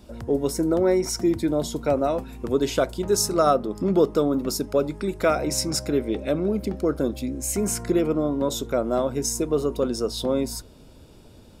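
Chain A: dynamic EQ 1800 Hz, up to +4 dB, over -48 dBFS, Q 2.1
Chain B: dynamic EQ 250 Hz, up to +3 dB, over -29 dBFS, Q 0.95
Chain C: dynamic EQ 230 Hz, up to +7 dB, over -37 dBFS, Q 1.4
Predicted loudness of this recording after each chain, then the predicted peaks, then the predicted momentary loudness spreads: -24.0, -22.5, -21.5 LUFS; -6.5, -7.0, -6.0 dBFS; 6, 6, 5 LU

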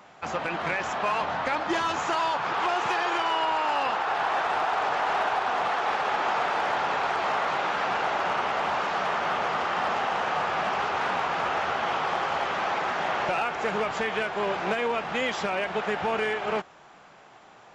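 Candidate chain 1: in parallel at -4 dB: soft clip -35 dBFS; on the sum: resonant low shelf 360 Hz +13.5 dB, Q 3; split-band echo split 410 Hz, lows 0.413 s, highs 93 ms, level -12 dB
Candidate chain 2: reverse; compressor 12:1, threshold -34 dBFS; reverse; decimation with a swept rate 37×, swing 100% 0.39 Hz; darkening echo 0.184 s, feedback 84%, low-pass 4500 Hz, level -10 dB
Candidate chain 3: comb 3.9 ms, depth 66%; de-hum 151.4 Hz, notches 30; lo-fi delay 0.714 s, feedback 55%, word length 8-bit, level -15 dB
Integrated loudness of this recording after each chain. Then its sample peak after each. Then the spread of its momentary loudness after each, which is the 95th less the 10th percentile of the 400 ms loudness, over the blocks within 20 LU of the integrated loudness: -22.0, -37.0, -25.0 LUFS; -5.0, -24.0, -13.5 dBFS; 7, 3, 3 LU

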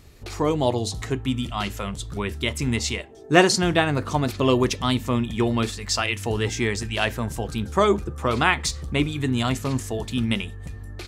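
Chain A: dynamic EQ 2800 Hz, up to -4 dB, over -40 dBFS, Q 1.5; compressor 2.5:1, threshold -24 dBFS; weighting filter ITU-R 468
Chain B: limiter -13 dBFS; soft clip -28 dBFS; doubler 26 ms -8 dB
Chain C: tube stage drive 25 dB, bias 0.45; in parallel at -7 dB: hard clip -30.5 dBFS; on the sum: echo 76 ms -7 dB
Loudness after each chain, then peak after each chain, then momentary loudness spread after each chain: -25.0, -31.5, -27.5 LUFS; -2.5, -25.0, -18.0 dBFS; 11, 4, 5 LU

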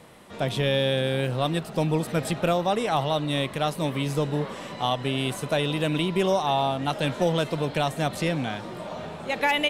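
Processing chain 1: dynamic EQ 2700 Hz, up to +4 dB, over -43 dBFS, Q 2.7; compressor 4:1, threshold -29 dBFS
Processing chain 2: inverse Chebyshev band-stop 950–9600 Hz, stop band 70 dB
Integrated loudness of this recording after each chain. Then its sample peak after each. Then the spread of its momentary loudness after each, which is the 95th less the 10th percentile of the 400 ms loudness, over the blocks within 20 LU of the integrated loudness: -32.5, -32.5 LUFS; -16.5, -21.0 dBFS; 4, 9 LU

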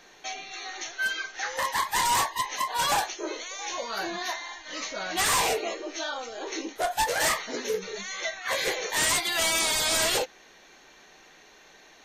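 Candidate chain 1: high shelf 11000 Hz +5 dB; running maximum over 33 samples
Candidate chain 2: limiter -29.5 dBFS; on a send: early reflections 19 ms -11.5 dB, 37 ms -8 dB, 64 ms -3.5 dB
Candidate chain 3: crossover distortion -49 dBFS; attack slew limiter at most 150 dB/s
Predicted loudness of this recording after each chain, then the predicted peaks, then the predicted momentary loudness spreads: -36.0, -34.0, -28.5 LUFS; -17.5, -22.5, -18.5 dBFS; 9, 18, 14 LU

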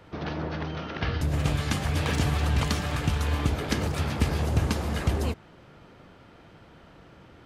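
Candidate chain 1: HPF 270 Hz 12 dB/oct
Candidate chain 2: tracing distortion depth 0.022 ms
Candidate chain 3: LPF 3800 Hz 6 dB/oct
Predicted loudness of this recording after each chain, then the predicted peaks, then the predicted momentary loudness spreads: -32.5, -28.0, -28.0 LUFS; -13.0, -8.5, -9.5 dBFS; 5, 7, 7 LU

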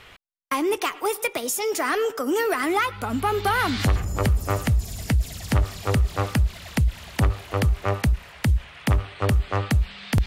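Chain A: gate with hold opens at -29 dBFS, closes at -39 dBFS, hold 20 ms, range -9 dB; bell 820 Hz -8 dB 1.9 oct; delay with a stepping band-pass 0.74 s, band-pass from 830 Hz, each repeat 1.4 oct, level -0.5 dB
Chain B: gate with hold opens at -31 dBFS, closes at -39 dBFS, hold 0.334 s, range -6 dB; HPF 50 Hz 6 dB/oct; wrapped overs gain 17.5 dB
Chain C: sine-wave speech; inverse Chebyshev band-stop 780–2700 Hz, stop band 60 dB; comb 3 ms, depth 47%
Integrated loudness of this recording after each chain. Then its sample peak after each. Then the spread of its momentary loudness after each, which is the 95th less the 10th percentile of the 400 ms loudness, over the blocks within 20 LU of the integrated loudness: -25.5, -24.5, -30.5 LUFS; -10.5, -17.5, -10.0 dBFS; 4, 4, 19 LU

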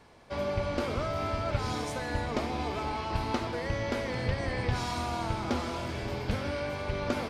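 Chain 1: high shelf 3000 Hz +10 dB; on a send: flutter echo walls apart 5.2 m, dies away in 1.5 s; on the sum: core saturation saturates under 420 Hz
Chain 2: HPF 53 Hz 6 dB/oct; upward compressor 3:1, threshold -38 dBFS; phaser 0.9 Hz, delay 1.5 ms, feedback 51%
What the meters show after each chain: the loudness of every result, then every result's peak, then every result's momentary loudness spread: -27.0, -31.0 LUFS; -11.5, -11.0 dBFS; 4, 5 LU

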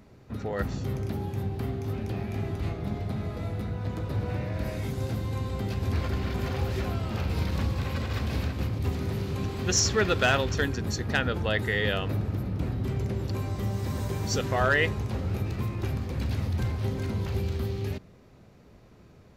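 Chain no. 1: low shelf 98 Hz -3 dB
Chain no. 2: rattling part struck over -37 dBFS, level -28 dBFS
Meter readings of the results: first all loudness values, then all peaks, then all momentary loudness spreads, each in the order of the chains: -30.0, -29.0 LUFS; -14.0, -13.0 dBFS; 9, 8 LU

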